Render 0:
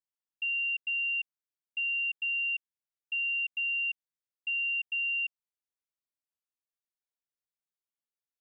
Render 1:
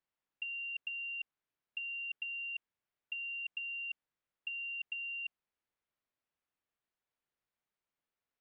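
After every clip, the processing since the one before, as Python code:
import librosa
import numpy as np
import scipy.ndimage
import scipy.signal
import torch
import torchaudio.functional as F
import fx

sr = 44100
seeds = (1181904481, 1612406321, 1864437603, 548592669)

y = scipy.signal.sosfilt(scipy.signal.butter(2, 2600.0, 'lowpass', fs=sr, output='sos'), x)
y = fx.over_compress(y, sr, threshold_db=-39.0, ratio=-0.5)
y = y * librosa.db_to_amplitude(1.0)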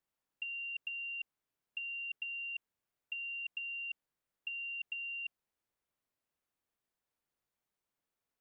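y = fx.peak_eq(x, sr, hz=2400.0, db=-3.5, octaves=2.5)
y = y * librosa.db_to_amplitude(3.0)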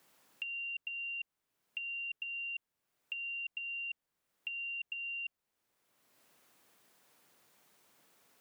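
y = fx.band_squash(x, sr, depth_pct=70)
y = y * librosa.db_to_amplitude(1.0)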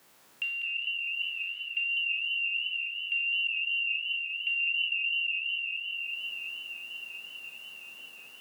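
y = fx.spec_trails(x, sr, decay_s=0.85)
y = fx.echo_diffused(y, sr, ms=1018, feedback_pct=54, wet_db=-5.5)
y = fx.echo_warbled(y, sr, ms=202, feedback_pct=46, rate_hz=2.8, cents=137, wet_db=-6)
y = y * librosa.db_to_amplitude(5.5)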